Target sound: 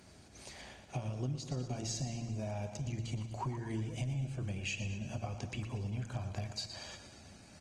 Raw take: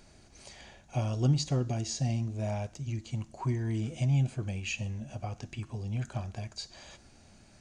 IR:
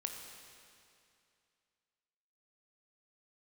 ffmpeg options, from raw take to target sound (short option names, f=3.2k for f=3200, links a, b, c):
-filter_complex "[0:a]bandreject=f=113.9:t=h:w=4,bandreject=f=227.8:t=h:w=4,bandreject=f=341.7:t=h:w=4,bandreject=f=455.6:t=h:w=4,bandreject=f=569.5:t=h:w=4,bandreject=f=683.4:t=h:w=4,bandreject=f=797.3:t=h:w=4,bandreject=f=911.2:t=h:w=4,asplit=2[a][b];[b]aecho=0:1:189:0.119[c];[a][c]amix=inputs=2:normalize=0,acompressor=threshold=-37dB:ratio=8,highpass=f=56:w=0.5412,highpass=f=56:w=1.3066,asplit=2[d][e];[e]aecho=0:1:117|234|351|468|585|702:0.299|0.167|0.0936|0.0524|0.0294|0.0164[f];[d][f]amix=inputs=2:normalize=0,volume=2dB" -ar 48000 -c:a libopus -b:a 20k